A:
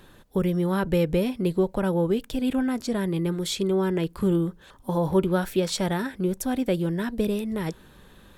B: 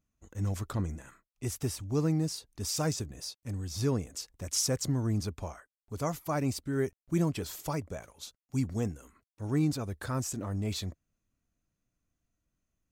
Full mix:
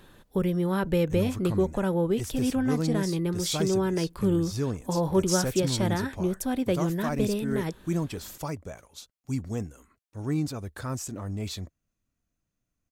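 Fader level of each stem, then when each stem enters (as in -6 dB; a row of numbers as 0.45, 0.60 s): -2.0, 0.0 dB; 0.00, 0.75 s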